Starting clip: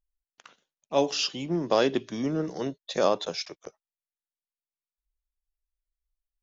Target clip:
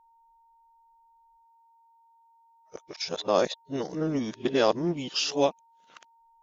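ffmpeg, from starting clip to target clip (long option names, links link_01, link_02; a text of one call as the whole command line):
ffmpeg -i in.wav -af "areverse,aeval=exprs='val(0)+0.00112*sin(2*PI*920*n/s)':channel_layout=same" out.wav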